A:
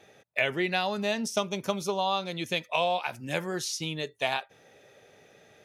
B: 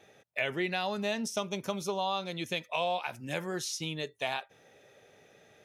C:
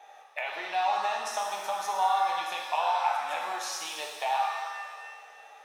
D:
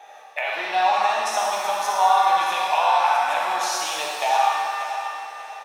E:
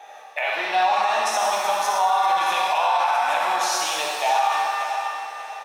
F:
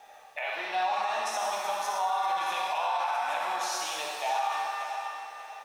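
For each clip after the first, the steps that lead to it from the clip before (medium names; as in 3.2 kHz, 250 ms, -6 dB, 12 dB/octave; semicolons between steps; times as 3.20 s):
band-stop 4.6 kHz, Q 17; in parallel at -0.5 dB: peak limiter -19.5 dBFS, peak gain reduction 7.5 dB; on the sum: trim -8.5 dB
compression, threshold -34 dBFS, peak gain reduction 8 dB; resonant high-pass 830 Hz, resonance Q 7.3; pitch-shifted reverb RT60 1.6 s, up +7 st, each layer -8 dB, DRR -0.5 dB
feedback delay 588 ms, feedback 33%, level -11 dB; on a send at -3 dB: reverberation RT60 1.1 s, pre-delay 47 ms; on the sum: trim +7 dB
peak limiter -13.5 dBFS, peak gain reduction 6.5 dB; trim +2 dB
small samples zeroed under -49 dBFS; trim -9 dB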